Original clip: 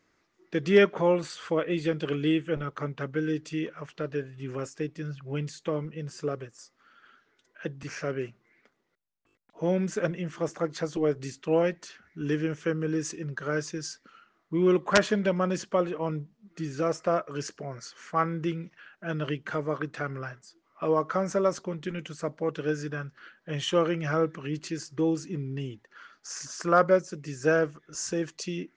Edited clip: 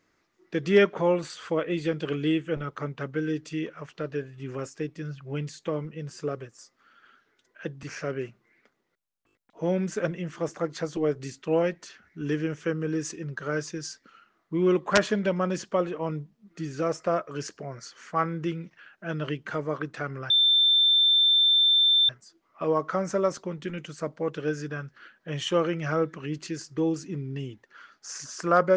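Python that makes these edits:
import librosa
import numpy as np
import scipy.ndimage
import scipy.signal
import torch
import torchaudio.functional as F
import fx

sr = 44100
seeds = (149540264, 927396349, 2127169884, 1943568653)

y = fx.edit(x, sr, fx.insert_tone(at_s=20.3, length_s=1.79, hz=3560.0, db=-17.0), tone=tone)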